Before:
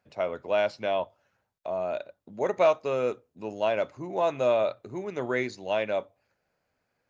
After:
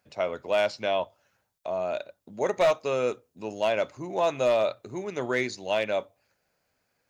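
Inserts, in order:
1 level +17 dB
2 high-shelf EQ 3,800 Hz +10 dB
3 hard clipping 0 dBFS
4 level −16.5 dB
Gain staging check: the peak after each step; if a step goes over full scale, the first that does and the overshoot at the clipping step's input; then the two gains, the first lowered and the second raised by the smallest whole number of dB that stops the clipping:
+6.5, +7.5, 0.0, −16.5 dBFS
step 1, 7.5 dB
step 1 +9 dB, step 4 −8.5 dB

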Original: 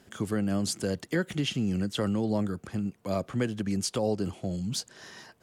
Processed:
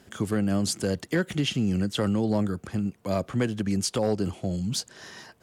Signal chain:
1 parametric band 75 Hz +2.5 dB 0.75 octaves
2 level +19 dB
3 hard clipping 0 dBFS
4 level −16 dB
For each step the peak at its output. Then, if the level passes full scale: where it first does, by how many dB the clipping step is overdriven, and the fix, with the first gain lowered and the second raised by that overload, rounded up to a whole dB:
−15.5, +3.5, 0.0, −16.0 dBFS
step 2, 3.5 dB
step 2 +15 dB, step 4 −12 dB

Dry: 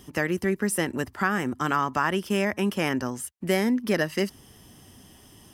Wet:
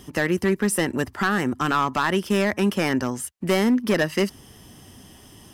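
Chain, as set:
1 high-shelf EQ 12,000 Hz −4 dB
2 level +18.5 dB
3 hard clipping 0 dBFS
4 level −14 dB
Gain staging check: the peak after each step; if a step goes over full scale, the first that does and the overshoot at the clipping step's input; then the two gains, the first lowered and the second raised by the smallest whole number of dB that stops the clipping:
−9.5, +9.0, 0.0, −14.0 dBFS
step 2, 9.0 dB
step 2 +9.5 dB, step 4 −5 dB

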